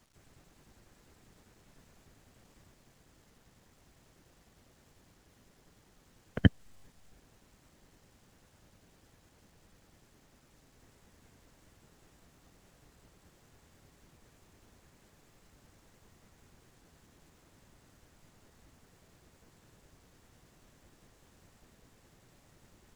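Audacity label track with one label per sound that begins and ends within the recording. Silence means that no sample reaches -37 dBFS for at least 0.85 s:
6.370000	6.480000	sound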